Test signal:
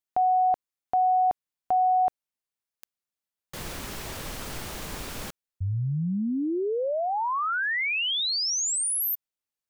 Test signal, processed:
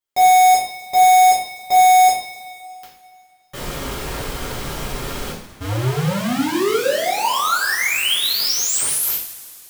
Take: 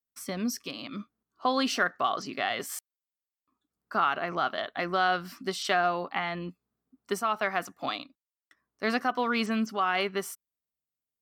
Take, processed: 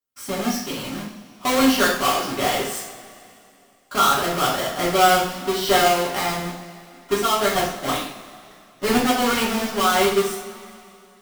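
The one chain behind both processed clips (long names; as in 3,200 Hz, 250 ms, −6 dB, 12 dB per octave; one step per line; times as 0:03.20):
each half-wave held at its own peak
coupled-rooms reverb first 0.51 s, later 2.7 s, from −18 dB, DRR −8 dB
level −4 dB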